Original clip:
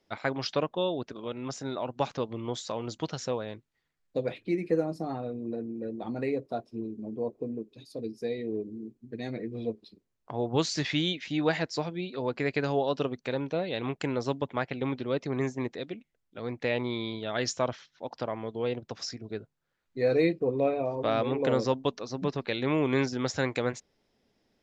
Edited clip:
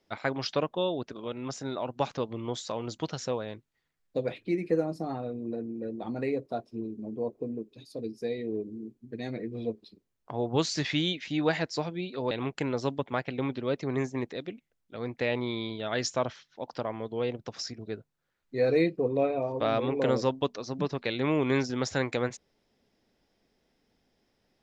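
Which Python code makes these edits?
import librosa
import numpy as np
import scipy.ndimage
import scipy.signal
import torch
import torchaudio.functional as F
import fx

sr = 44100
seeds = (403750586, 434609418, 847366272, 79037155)

y = fx.edit(x, sr, fx.cut(start_s=12.31, length_s=1.43), tone=tone)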